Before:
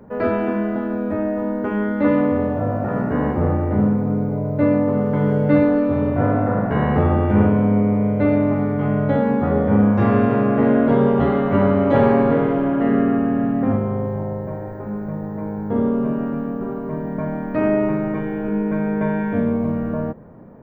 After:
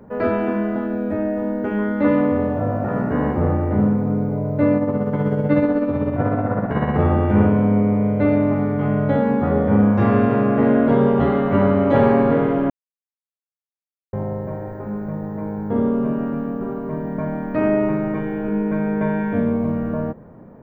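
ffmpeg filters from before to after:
-filter_complex "[0:a]asettb=1/sr,asplit=3[s0][s1][s2];[s0]atrim=end=0.864[s3];[s1]atrim=start=0.86:end=1.79,asetpts=PTS-STARTPTS,afade=t=in:d=0.004:c=qsin,afade=t=out:st=0.926:d=0.004:c=qsin,equalizer=f=1100:t=o:w=0.2:g=-14.5[s4];[s2]atrim=start=1.786[s5];[s3][s4]acrossfade=d=0.004:c1=hsin:c2=qsin[s6];[s6][s5]acrossfade=d=0.004:c1=qsin:c2=hsin,asettb=1/sr,asplit=3[s7][s8][s9];[s7]atrim=end=4.774[s10];[s8]atrim=start=4.77:end=6.99,asetpts=PTS-STARTPTS,afade=t=in:d=0.004:c=qsin,afade=t=out:st=2.216:d=0.004:c=qsin,tremolo=f=16:d=0.46[s11];[s9]atrim=start=6.986[s12];[s10][s11]acrossfade=d=0.004:c1=hsin:c2=qsin[s13];[s13][s12]acrossfade=d=0.004:c1=qsin:c2=hsin,asplit=3[s14][s15][s16];[s14]atrim=end=12.7,asetpts=PTS-STARTPTS,afade=t=out:st=12.696:d=0.004:c=hsin[s17];[s15]atrim=start=12.7:end=14.13,asetpts=PTS-STARTPTS,volume=0[s18];[s16]atrim=start=14.13,asetpts=PTS-STARTPTS,afade=t=in:d=0.004:c=hsin[s19];[s17][s18][s19]concat=n=3:v=0:a=1"

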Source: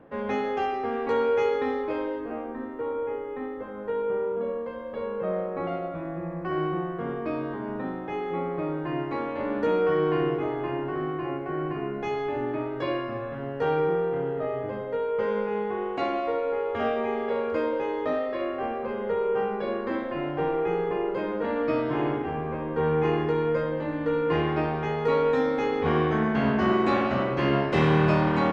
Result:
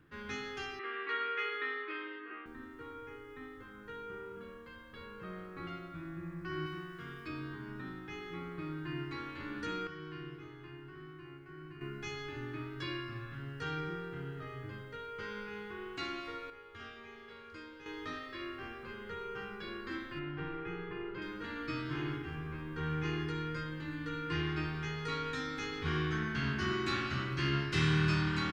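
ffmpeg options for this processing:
-filter_complex "[0:a]asettb=1/sr,asplit=3[s0][s1][s2];[s0]atrim=end=0.794[s3];[s1]atrim=start=0.79:end=2.46,asetpts=PTS-STARTPTS,afade=t=in:d=0.004:c=qsin,afade=t=out:st=1.666:d=0.004:c=qsin,highpass=f=350:w=0.5412,highpass=f=350:w=1.3066,equalizer=f=370:t=q:w=4:g=5,equalizer=f=540:t=q:w=4:g=-5,equalizer=f=850:t=q:w=4:g=-6,equalizer=f=1200:t=q:w=4:g=7,equalizer=f=1900:t=q:w=4:g=9,equalizer=f=2800:t=q:w=4:g=5,lowpass=f=3500:w=0.5412,lowpass=f=3500:w=1.3066[s4];[s2]atrim=start=2.456[s5];[s3][s4]acrossfade=d=0.004:c1=hsin:c2=qsin[s6];[s6][s5]acrossfade=d=0.004:c1=qsin:c2=hsin,asettb=1/sr,asplit=3[s7][s8][s9];[s7]atrim=end=6.664[s10];[s8]atrim=start=6.66:end=7.28,asetpts=PTS-STARTPTS,afade=t=in:d=0.004:c=qsin,afade=t=out:st=0.616:d=0.004:c=qsin,tiltshelf=f=1500:g=-4.5[s11];[s9]atrim=start=7.276[s12];[s10][s11]acrossfade=d=0.004:c1=hsin:c2=qsin[s13];[s13][s12]acrossfade=d=0.004:c1=qsin:c2=hsin,asettb=1/sr,asplit=3[s14][s15][s16];[s14]atrim=end=20.194[s17];[s15]atrim=start=20.19:end=21.22,asetpts=PTS-STARTPTS,afade=t=in:d=0.004:c=qsin,afade=t=out:st=1.026:d=0.004:c=qsin,lowpass=2800[s18];[s16]atrim=start=21.216[s19];[s17][s18]acrossfade=d=0.004:c1=hsin:c2=qsin[s20];[s20][s19]acrossfade=d=0.004:c1=qsin:c2=hsin,asplit=5[s21][s22][s23][s24][s25];[s21]atrim=end=9.872[s26];[s22]atrim=start=9.868:end=11.812,asetpts=PTS-STARTPTS,volume=0.355[s27];[s23]atrim=start=11.808:end=16.502[s28];[s24]atrim=start=16.498:end=17.862,asetpts=PTS-STARTPTS,volume=0.376[s29];[s25]atrim=start=17.858[s30];[s26][s27]acrossfade=d=0.004:c1=hsin:c2=hsin[s31];[s31][s28]acrossfade=d=0.004:c1=hsin:c2=hsin[s32];[s32][s29]acrossfade=d=0.004:c1=hsin:c2=hsin[s33];[s33][s30]acrossfade=d=0.004:c1=hsin:c2=hsin,firequalizer=gain_entry='entry(130,0);entry(230,-14);entry(330,-6);entry(550,-26);entry(1400,-1);entry(2000,-3);entry(4600,8)':delay=0.05:min_phase=1,volume=0.708"

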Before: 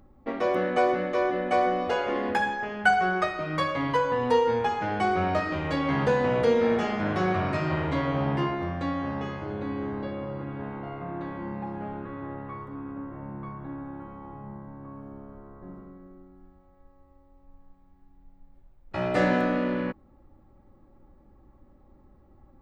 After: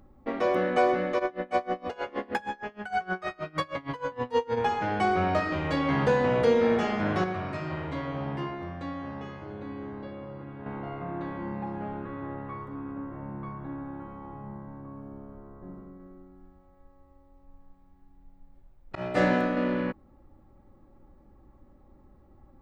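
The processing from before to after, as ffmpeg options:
-filter_complex "[0:a]asplit=3[s0][s1][s2];[s0]afade=t=out:st=1.18:d=0.02[s3];[s1]aeval=exprs='val(0)*pow(10,-25*(0.5-0.5*cos(2*PI*6.4*n/s))/20)':c=same,afade=t=in:st=1.18:d=0.02,afade=t=out:st=4.56:d=0.02[s4];[s2]afade=t=in:st=4.56:d=0.02[s5];[s3][s4][s5]amix=inputs=3:normalize=0,asettb=1/sr,asplit=3[s6][s7][s8];[s6]atrim=end=14.814[s9];[s7]atrim=start=14.81:end=16,asetpts=PTS-STARTPTS,afade=t=in:d=0.004:c=qsin,afade=t=out:st=1.186:d=0.004:c=qsin,equalizer=f=2000:t=o:w=2.6:g=-3.5[s10];[s8]atrim=start=15.996[s11];[s9][s10]acrossfade=d=0.004:c1=hsin:c2=qsin[s12];[s12][s11]acrossfade=d=0.004:c1=qsin:c2=hsin,asettb=1/sr,asplit=3[s13][s14][s15];[s13]atrim=end=18.954[s16];[s14]atrim=start=18.95:end=19.57,asetpts=PTS-STARTPTS,afade=t=in:d=0.004:c=qsin,afade=t=out:st=0.616:d=0.004:c=qsin,agate=range=0.0224:threshold=0.0708:ratio=3:release=100:detection=peak[s17];[s15]atrim=start=19.566[s18];[s16][s17]acrossfade=d=0.004:c1=hsin:c2=qsin[s19];[s19][s18]acrossfade=d=0.004:c1=qsin:c2=hsin,asplit=3[s20][s21][s22];[s20]atrim=end=7.242[s23];[s21]atrim=start=7.238:end=10.662,asetpts=PTS-STARTPTS,volume=0.473[s24];[s22]atrim=start=10.658[s25];[s23][s24]acrossfade=d=0.004:c1=hsin:c2=hsin[s26];[s26][s25]acrossfade=d=0.004:c1=hsin:c2=hsin"

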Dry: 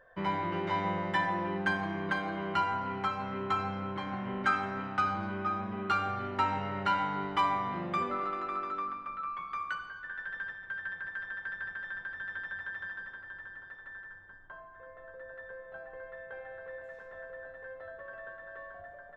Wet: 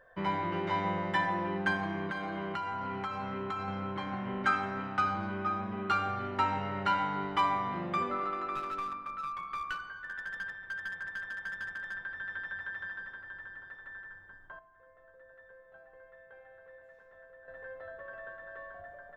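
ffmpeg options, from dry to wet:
-filter_complex "[0:a]asettb=1/sr,asplit=3[s0][s1][s2];[s0]atrim=end=2.064[s3];[s1]atrim=start=2.06:end=3.68,asetpts=PTS-STARTPTS,afade=t=in:d=0.004:c=qsin,afade=t=out:st=1.616:d=0.004:c=qsin,acompressor=threshold=0.0251:ratio=6:attack=3.2:release=140:knee=1:detection=peak[s4];[s2]atrim=start=3.676[s5];[s3][s4]acrossfade=d=0.004:c1=hsin:c2=qsin[s6];[s6][s5]acrossfade=d=0.004:c1=qsin:c2=hsin,asettb=1/sr,asplit=3[s7][s8][s9];[s7]atrim=end=8.554[s10];[s8]atrim=start=8.55:end=11.94,asetpts=PTS-STARTPTS,afade=t=in:d=0.004:c=qsin,afade=t=out:st=3.386:d=0.004:c=qsin,aeval=exprs='clip(val(0),-1,0.0188)':c=same[s11];[s9]atrim=start=11.936[s12];[s10][s11]acrossfade=d=0.004:c1=hsin:c2=qsin[s13];[s13][s12]acrossfade=d=0.004:c1=qsin:c2=hsin,asplit=3[s14][s15][s16];[s14]atrim=end=14.592[s17];[s15]atrim=start=14.588:end=17.482,asetpts=PTS-STARTPTS,volume=0.316[s18];[s16]atrim=start=17.478[s19];[s17][s18]acrossfade=d=0.004:c1=hsin:c2=hsin[s20];[s20][s19]acrossfade=d=0.004:c1=hsin:c2=hsin"

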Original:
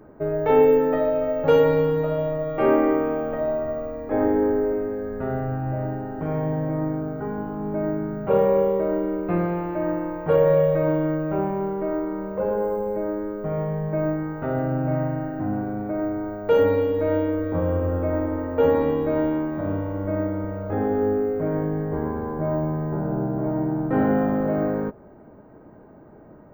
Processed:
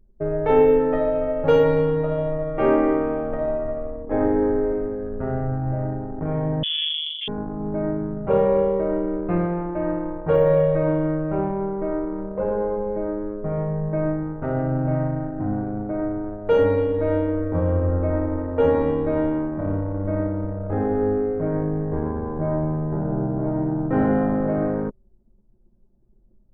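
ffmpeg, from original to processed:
-filter_complex "[0:a]asettb=1/sr,asplit=3[s0][s1][s2];[s0]atrim=end=6.634[s3];[s1]atrim=start=6.63:end=7.28,asetpts=PTS-STARTPTS,afade=t=in:d=0.004:c=qsin,afade=t=out:st=0.646:d=0.004:c=qsin,lowpass=f=3100:t=q:w=0.5098,lowpass=f=3100:t=q:w=0.6013,lowpass=f=3100:t=q:w=0.9,lowpass=f=3100:t=q:w=2.563,afreqshift=-3600[s4];[s2]atrim=start=7.276[s5];[s3][s4]acrossfade=d=0.004:c1=hsin:c2=qsin[s6];[s6][s5]acrossfade=d=0.004:c1=qsin:c2=hsin,anlmdn=39.8,lowshelf=f=66:g=11.5"

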